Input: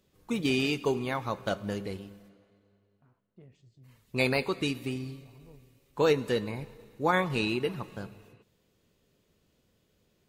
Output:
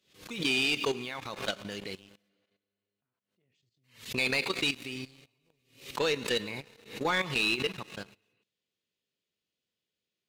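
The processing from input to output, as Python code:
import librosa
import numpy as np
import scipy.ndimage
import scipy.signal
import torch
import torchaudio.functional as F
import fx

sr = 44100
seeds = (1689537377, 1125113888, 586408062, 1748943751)

y = fx.weighting(x, sr, curve='D')
y = fx.level_steps(y, sr, step_db=13)
y = fx.leveller(y, sr, passes=2)
y = fx.pre_swell(y, sr, db_per_s=130.0)
y = y * 10.0 ** (-7.0 / 20.0)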